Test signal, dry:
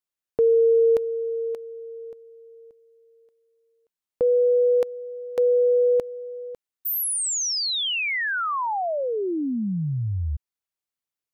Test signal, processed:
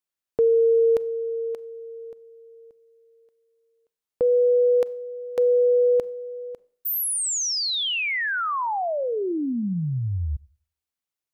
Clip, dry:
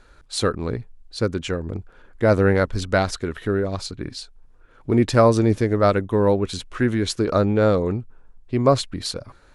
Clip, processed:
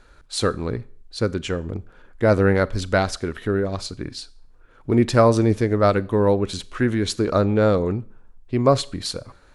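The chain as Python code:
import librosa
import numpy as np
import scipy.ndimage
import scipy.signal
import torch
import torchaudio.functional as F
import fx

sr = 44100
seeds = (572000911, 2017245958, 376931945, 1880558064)

y = fx.rev_schroeder(x, sr, rt60_s=0.49, comb_ms=30, drr_db=20.0)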